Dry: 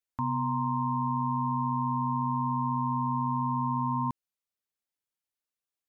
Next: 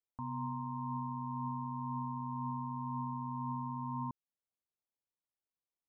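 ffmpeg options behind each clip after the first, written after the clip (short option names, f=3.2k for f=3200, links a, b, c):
-af "lowpass=f=1.1k:w=0.5412,lowpass=f=1.1k:w=1.3066,alimiter=level_in=4.5dB:limit=-24dB:level=0:latency=1:release=216,volume=-4.5dB,volume=-3dB"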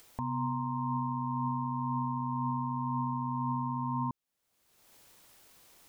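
-af "acompressor=mode=upward:threshold=-41dB:ratio=2.5,volume=6dB"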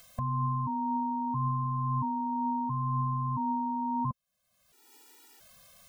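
-af "afftfilt=real='re*gt(sin(2*PI*0.74*pts/sr)*(1-2*mod(floor(b*sr/1024/250),2)),0)':imag='im*gt(sin(2*PI*0.74*pts/sr)*(1-2*mod(floor(b*sr/1024/250),2)),0)':win_size=1024:overlap=0.75,volume=6dB"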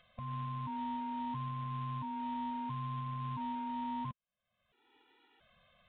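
-af "alimiter=level_in=3dB:limit=-24dB:level=0:latency=1:release=377,volume=-3dB,acrusher=bits=3:mode=log:mix=0:aa=0.000001,aresample=8000,aresample=44100,volume=-5dB"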